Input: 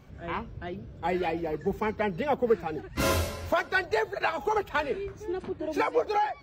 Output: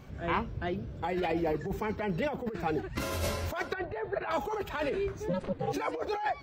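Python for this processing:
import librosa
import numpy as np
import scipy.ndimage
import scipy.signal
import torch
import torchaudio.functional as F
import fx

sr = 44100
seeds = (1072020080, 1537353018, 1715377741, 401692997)

y = fx.ring_mod(x, sr, carrier_hz=180.0, at=(5.28, 5.72), fade=0.02)
y = fx.over_compress(y, sr, threshold_db=-31.0, ratio=-1.0)
y = fx.air_absorb(y, sr, metres=460.0, at=(3.73, 4.31))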